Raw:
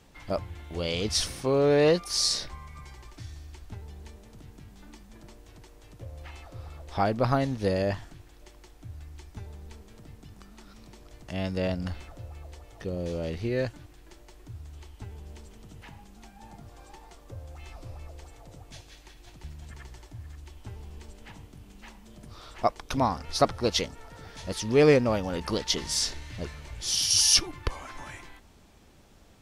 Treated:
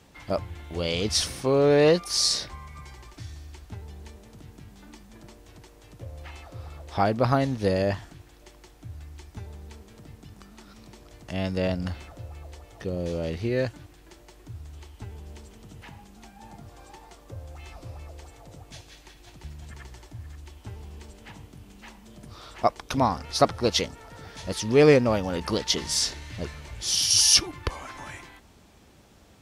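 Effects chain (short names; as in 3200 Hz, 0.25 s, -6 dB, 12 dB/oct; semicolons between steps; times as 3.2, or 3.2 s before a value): HPF 50 Hz; gain +2.5 dB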